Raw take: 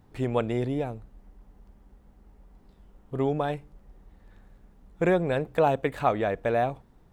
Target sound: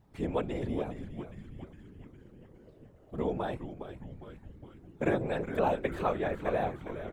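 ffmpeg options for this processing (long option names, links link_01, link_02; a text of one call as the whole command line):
ffmpeg -i in.wav -filter_complex "[0:a]asplit=9[link_01][link_02][link_03][link_04][link_05][link_06][link_07][link_08][link_09];[link_02]adelay=410,afreqshift=-120,volume=-9.5dB[link_10];[link_03]adelay=820,afreqshift=-240,volume=-13.5dB[link_11];[link_04]adelay=1230,afreqshift=-360,volume=-17.5dB[link_12];[link_05]adelay=1640,afreqshift=-480,volume=-21.5dB[link_13];[link_06]adelay=2050,afreqshift=-600,volume=-25.6dB[link_14];[link_07]adelay=2460,afreqshift=-720,volume=-29.6dB[link_15];[link_08]adelay=2870,afreqshift=-840,volume=-33.6dB[link_16];[link_09]adelay=3280,afreqshift=-960,volume=-37.6dB[link_17];[link_01][link_10][link_11][link_12][link_13][link_14][link_15][link_16][link_17]amix=inputs=9:normalize=0,afftfilt=real='hypot(re,im)*cos(2*PI*random(0))':imag='hypot(re,im)*sin(2*PI*random(1))':win_size=512:overlap=0.75" out.wav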